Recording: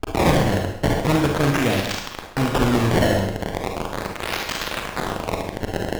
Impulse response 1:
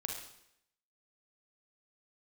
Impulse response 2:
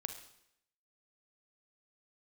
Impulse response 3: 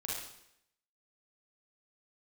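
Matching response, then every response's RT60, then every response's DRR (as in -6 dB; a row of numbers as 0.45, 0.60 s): 1; 0.75, 0.75, 0.75 s; 1.0, 7.0, -5.5 dB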